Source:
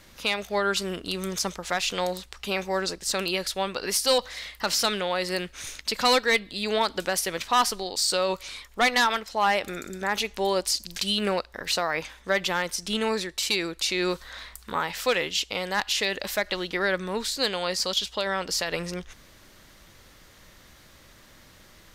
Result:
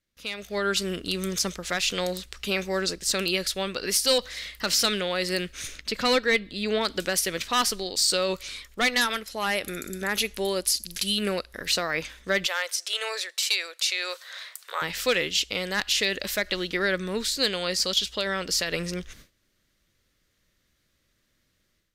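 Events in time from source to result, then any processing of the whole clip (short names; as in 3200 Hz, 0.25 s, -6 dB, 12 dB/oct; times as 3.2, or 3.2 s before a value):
5.67–6.85 high shelf 3800 Hz -10 dB
9.01–11.67 bell 11000 Hz +15 dB 0.25 oct
12.46–14.82 steep high-pass 530 Hz
whole clip: gate with hold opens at -39 dBFS; bell 870 Hz -10.5 dB 0.87 oct; AGC gain up to 11.5 dB; gain -8 dB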